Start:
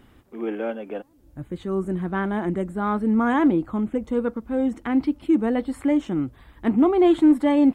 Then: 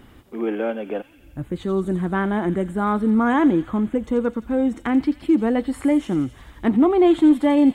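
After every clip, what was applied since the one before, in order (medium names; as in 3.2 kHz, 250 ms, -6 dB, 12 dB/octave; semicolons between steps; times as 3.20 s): in parallel at -1 dB: compression, threshold -28 dBFS, peak gain reduction 15 dB; on the sum: feedback echo behind a high-pass 86 ms, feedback 73%, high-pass 3.4 kHz, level -7 dB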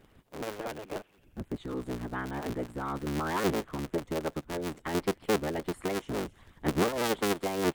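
cycle switcher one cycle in 3, inverted; harmonic-percussive split harmonic -11 dB; trim -8.5 dB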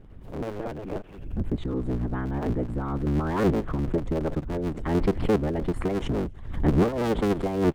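tilt EQ -3.5 dB/octave; swell ahead of each attack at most 75 dB/s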